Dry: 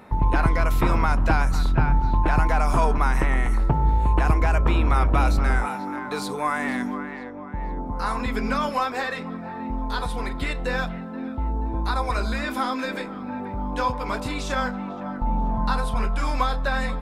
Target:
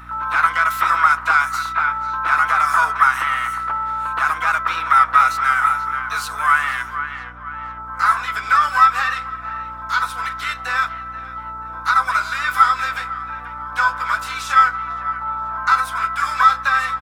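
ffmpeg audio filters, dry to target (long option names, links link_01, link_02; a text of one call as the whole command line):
ffmpeg -i in.wav -filter_complex "[0:a]highshelf=frequency=4500:gain=5.5,aecho=1:1:6.1:0.31,asplit=3[link_01][link_02][link_03];[link_02]asetrate=29433,aresample=44100,atempo=1.49831,volume=-12dB[link_04];[link_03]asetrate=66075,aresample=44100,atempo=0.66742,volume=-8dB[link_05];[link_01][link_04][link_05]amix=inputs=3:normalize=0,highpass=frequency=1300:width_type=q:width=5.7,aeval=exprs='val(0)+0.00891*(sin(2*PI*60*n/s)+sin(2*PI*2*60*n/s)/2+sin(2*PI*3*60*n/s)/3+sin(2*PI*4*60*n/s)/4+sin(2*PI*5*60*n/s)/5)':channel_layout=same" out.wav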